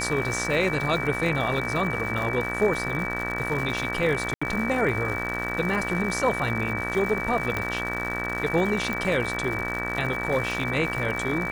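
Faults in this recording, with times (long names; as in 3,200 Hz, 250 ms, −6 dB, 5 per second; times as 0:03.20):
mains buzz 60 Hz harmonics 32 −32 dBFS
surface crackle 230 per second −31 dBFS
whistle 2,300 Hz −30 dBFS
0:04.34–0:04.42: drop-out 75 ms
0:07.57: click −13 dBFS
0:08.93: click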